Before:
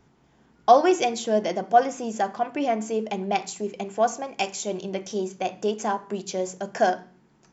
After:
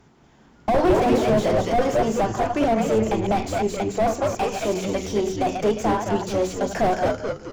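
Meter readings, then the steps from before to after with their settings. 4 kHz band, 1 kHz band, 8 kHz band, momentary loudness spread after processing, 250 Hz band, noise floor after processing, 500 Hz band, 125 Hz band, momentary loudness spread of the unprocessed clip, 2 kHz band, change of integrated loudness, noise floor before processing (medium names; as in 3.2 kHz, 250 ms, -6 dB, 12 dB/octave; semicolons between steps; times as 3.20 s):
+1.0 dB, 0.0 dB, no reading, 6 LU, +6.5 dB, -53 dBFS, +4.0 dB, +12.0 dB, 11 LU, +2.0 dB, +3.0 dB, -61 dBFS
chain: chunks repeated in reverse 145 ms, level -9 dB; de-hum 47.2 Hz, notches 11; Chebyshev shaper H 8 -22 dB, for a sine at -3 dBFS; frequency-shifting echo 215 ms, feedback 41%, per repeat -110 Hz, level -8 dB; slew-rate limiter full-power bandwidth 45 Hz; trim +6 dB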